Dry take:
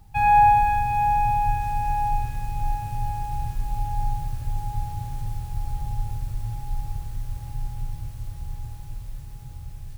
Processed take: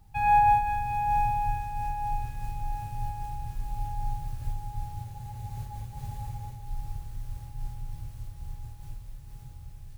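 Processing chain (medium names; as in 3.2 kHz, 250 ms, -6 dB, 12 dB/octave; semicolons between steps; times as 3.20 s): spectral freeze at 5.07 s, 1.57 s; random flutter of the level, depth 60%; trim -3 dB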